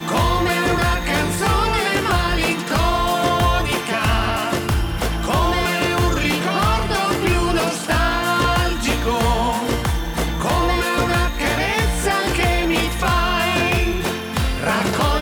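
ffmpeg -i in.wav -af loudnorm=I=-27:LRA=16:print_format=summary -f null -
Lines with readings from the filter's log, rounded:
Input Integrated:    -19.0 LUFS
Input True Peak:      -7.1 dBTP
Input LRA:             0.7 LU
Input Threshold:     -29.0 LUFS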